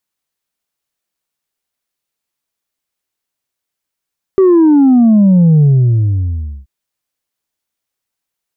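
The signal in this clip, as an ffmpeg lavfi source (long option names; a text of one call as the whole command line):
ffmpeg -f lavfi -i "aevalsrc='0.562*clip((2.28-t)/1.04,0,1)*tanh(1.26*sin(2*PI*390*2.28/log(65/390)*(exp(log(65/390)*t/2.28)-1)))/tanh(1.26)':duration=2.28:sample_rate=44100" out.wav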